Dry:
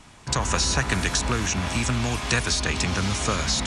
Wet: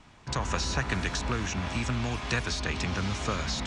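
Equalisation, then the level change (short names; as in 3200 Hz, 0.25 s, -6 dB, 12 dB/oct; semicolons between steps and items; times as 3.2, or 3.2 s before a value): air absorption 90 m; -5.0 dB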